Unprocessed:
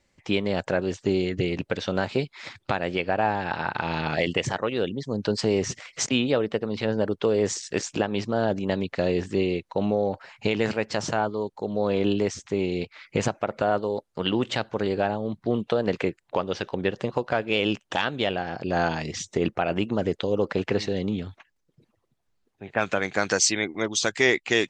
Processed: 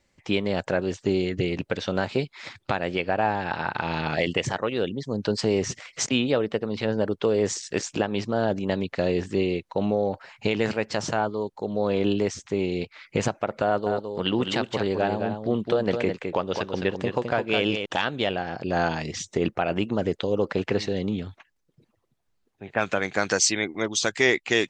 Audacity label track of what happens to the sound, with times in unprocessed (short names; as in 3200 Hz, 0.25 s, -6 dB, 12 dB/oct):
13.650000	17.860000	echo 0.211 s -6 dB